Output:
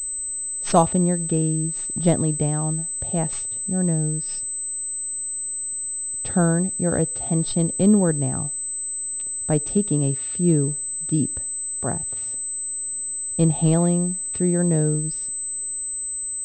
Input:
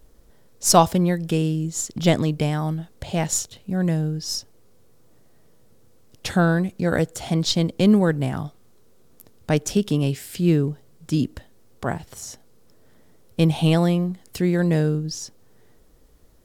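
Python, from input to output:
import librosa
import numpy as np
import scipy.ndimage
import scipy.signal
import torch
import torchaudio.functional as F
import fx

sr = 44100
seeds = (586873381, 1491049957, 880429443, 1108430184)

y = fx.peak_eq(x, sr, hz=2500.0, db=-11.0, octaves=1.8)
y = fx.pwm(y, sr, carrier_hz=8100.0)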